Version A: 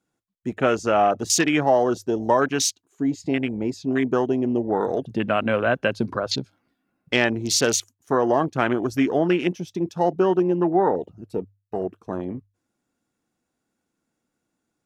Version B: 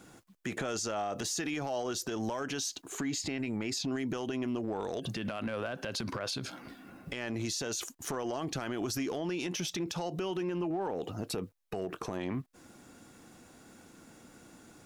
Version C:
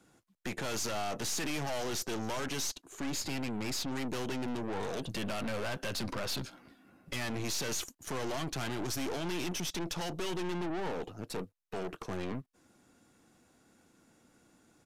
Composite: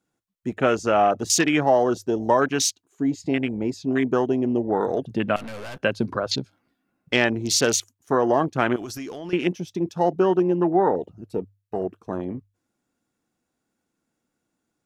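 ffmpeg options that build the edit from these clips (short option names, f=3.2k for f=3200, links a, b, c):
-filter_complex "[0:a]asplit=3[a][b][c];[a]atrim=end=5.362[d];[2:a]atrim=start=5.358:end=5.782[e];[b]atrim=start=5.778:end=8.762[f];[1:a]atrim=start=8.758:end=9.332[g];[c]atrim=start=9.328[h];[d][e]acrossfade=d=0.004:c1=hsin:c2=hsin[i];[i][f]acrossfade=d=0.004:c1=hsin:c2=hsin[j];[j][g]acrossfade=d=0.004:c1=hsin:c2=hsin[k];[k][h]acrossfade=d=0.004:c1=hsin:c2=hsin"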